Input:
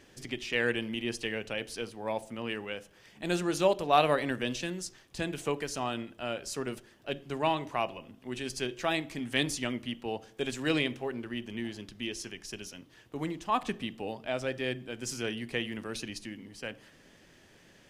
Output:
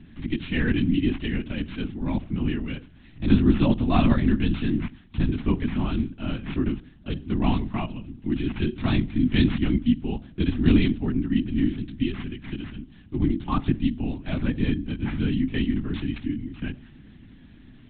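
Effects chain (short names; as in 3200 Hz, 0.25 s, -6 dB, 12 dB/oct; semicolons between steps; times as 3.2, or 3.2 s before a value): careless resampling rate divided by 6×, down none, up zero stuff; LPC vocoder at 8 kHz whisper; resonant low shelf 360 Hz +11.5 dB, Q 3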